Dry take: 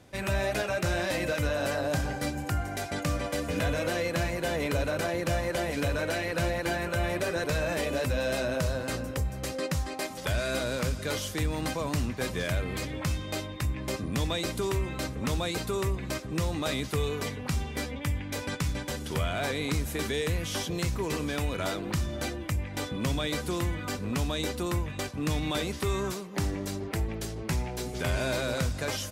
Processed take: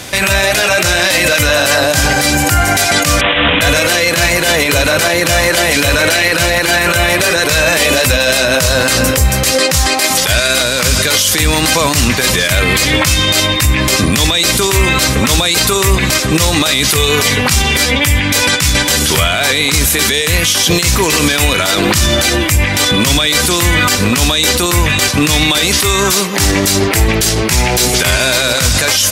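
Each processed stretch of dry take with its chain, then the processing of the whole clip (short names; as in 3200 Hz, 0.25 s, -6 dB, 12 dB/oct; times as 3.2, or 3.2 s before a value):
3.21–3.61 companded quantiser 2-bit + careless resampling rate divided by 6×, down none, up filtered
whole clip: tilt shelf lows -7.5 dB, about 1300 Hz; negative-ratio compressor -32 dBFS, ratio -0.5; maximiser +29 dB; gain -1 dB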